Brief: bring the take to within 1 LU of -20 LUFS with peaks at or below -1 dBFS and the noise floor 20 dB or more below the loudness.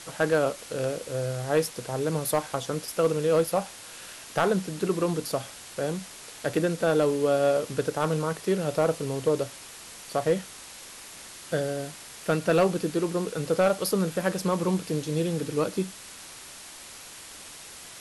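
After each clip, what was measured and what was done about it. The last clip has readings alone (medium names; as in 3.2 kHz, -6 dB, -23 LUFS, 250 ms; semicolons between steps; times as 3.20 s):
clipped samples 0.3%; clipping level -15.0 dBFS; noise floor -45 dBFS; noise floor target -48 dBFS; loudness -27.5 LUFS; peak level -15.0 dBFS; loudness target -20.0 LUFS
-> clip repair -15 dBFS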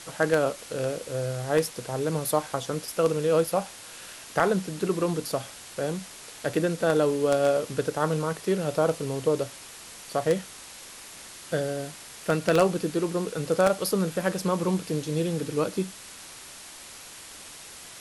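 clipped samples 0.0%; noise floor -45 dBFS; noise floor target -47 dBFS
-> noise reduction 6 dB, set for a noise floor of -45 dBFS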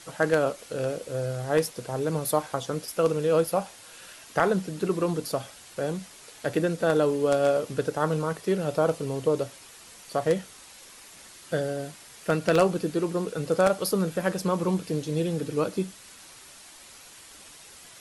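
noise floor -49 dBFS; loudness -27.0 LUFS; peak level -6.0 dBFS; loudness target -20.0 LUFS
-> trim +7 dB; peak limiter -1 dBFS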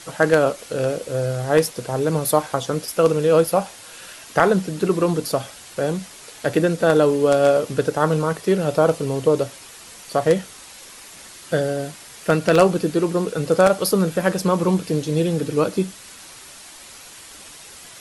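loudness -20.0 LUFS; peak level -1.0 dBFS; noise floor -42 dBFS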